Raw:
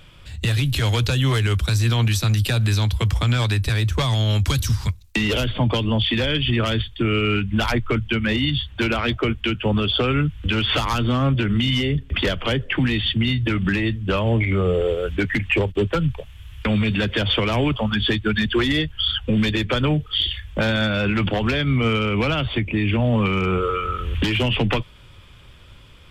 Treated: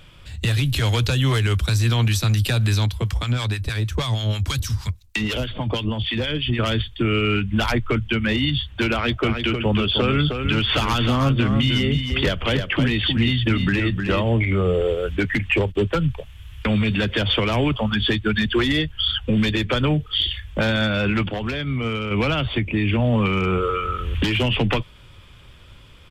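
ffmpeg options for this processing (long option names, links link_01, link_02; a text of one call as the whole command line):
ffmpeg -i in.wav -filter_complex "[0:a]asettb=1/sr,asplit=3[link_01][link_02][link_03];[link_01]atrim=end=2.864[link_04];[link_02]atrim=start=2.86:end=6.59,asetpts=PTS-STARTPTS,afade=type=in:duration=0.004:curve=qsin,afade=type=out:start_time=3.726:duration=0.004:curve=qsin,acrossover=split=920[link_05][link_06];[link_05]aeval=exprs='val(0)*(1-0.7/2+0.7/2*cos(2*PI*6.3*n/s))':channel_layout=same[link_07];[link_06]aeval=exprs='val(0)*(1-0.7/2-0.7/2*cos(2*PI*6.3*n/s))':channel_layout=same[link_08];[link_07][link_08]amix=inputs=2:normalize=0[link_09];[link_03]atrim=start=6.586[link_10];[link_04][link_09]acrossfade=duration=0.004:curve1=hsin:curve2=qsin[link_11];[link_11][link_10]acrossfade=duration=0.004:curve1=qsin:curve2=hsin,asplit=3[link_12][link_13][link_14];[link_12]afade=type=out:start_time=9.22:duration=0.02[link_15];[link_13]aecho=1:1:311:0.473,afade=type=in:start_time=9.22:duration=0.02,afade=type=out:start_time=14.29:duration=0.02[link_16];[link_14]afade=type=in:start_time=14.29:duration=0.02[link_17];[link_15][link_16][link_17]amix=inputs=3:normalize=0,asplit=3[link_18][link_19][link_20];[link_18]atrim=end=21.232[link_21];[link_19]atrim=start=21.228:end=22.112,asetpts=PTS-STARTPTS,volume=-5dB[link_22];[link_20]atrim=start=22.108[link_23];[link_21][link_22]acrossfade=duration=0.004:curve1=hsin:curve2=hsin[link_24];[link_24][link_23]acrossfade=duration=0.004:curve1=hsin:curve2=hsin" out.wav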